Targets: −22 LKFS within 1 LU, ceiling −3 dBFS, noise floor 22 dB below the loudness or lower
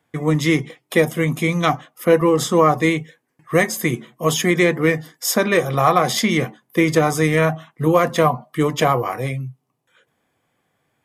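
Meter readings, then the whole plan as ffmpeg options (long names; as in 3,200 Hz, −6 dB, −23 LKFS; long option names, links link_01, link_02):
integrated loudness −18.5 LKFS; sample peak −2.5 dBFS; target loudness −22.0 LKFS
→ -af "volume=-3.5dB"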